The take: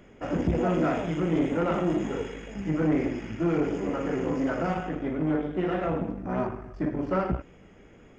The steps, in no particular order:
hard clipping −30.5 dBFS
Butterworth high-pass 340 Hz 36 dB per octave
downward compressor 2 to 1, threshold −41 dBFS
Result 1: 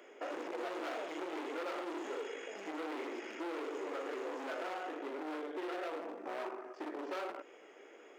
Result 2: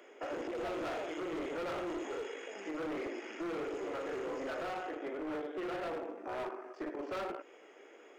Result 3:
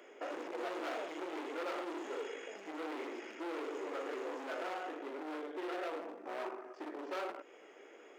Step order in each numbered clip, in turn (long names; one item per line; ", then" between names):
hard clipping, then Butterworth high-pass, then downward compressor
Butterworth high-pass, then hard clipping, then downward compressor
hard clipping, then downward compressor, then Butterworth high-pass